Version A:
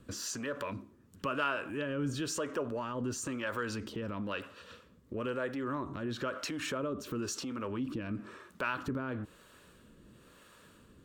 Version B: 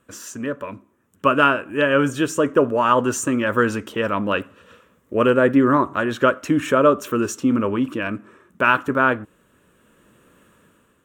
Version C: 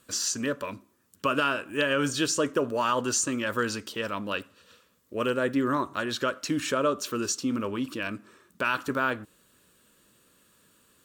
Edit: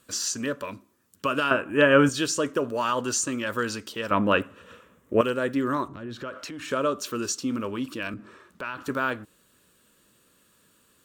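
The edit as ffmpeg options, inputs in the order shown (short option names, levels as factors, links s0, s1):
-filter_complex "[1:a]asplit=2[s0][s1];[0:a]asplit=2[s2][s3];[2:a]asplit=5[s4][s5][s6][s7][s8];[s4]atrim=end=1.512[s9];[s0]atrim=start=1.508:end=2.092[s10];[s5]atrim=start=2.088:end=4.112[s11];[s1]atrim=start=4.108:end=5.212[s12];[s6]atrim=start=5.208:end=5.882[s13];[s2]atrim=start=5.878:end=6.712[s14];[s7]atrim=start=6.708:end=8.142[s15];[s3]atrim=start=8.138:end=8.832[s16];[s8]atrim=start=8.828[s17];[s9][s10]acrossfade=d=0.004:c1=hsin:c2=hsin[s18];[s18][s11]acrossfade=d=0.004:c1=hsin:c2=hsin[s19];[s19][s12]acrossfade=d=0.004:c1=hsin:c2=hsin[s20];[s20][s13]acrossfade=d=0.004:c1=hsin:c2=hsin[s21];[s21][s14]acrossfade=d=0.004:c1=hsin:c2=hsin[s22];[s22][s15]acrossfade=d=0.004:c1=hsin:c2=hsin[s23];[s23][s16]acrossfade=d=0.004:c1=hsin:c2=hsin[s24];[s24][s17]acrossfade=d=0.004:c1=hsin:c2=hsin"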